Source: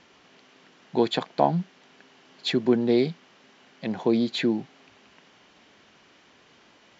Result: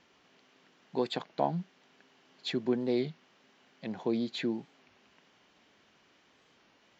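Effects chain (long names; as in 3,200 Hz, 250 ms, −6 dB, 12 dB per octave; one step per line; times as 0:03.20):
wow of a warped record 33 1/3 rpm, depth 100 cents
level −8.5 dB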